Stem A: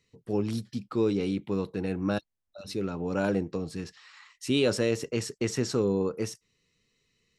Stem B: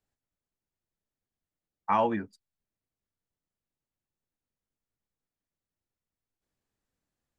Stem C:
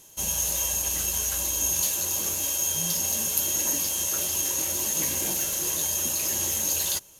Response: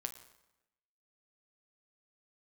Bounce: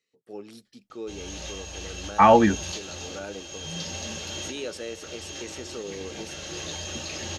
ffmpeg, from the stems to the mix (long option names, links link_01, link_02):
-filter_complex "[0:a]highpass=360,volume=-7.5dB,asplit=2[link_01][link_02];[1:a]dynaudnorm=framelen=330:gausssize=9:maxgain=15dB,adelay=300,volume=1dB[link_03];[2:a]lowpass=frequency=4800:width=0.5412,lowpass=frequency=4800:width=1.3066,adelay=900,volume=1dB[link_04];[link_02]apad=whole_len=357146[link_05];[link_04][link_05]sidechaincompress=threshold=-39dB:ratio=8:attack=7.5:release=673[link_06];[link_01][link_03][link_06]amix=inputs=3:normalize=0,asuperstop=centerf=1000:order=4:qfactor=7.4,equalizer=frequency=81:width=2.2:gain=3.5"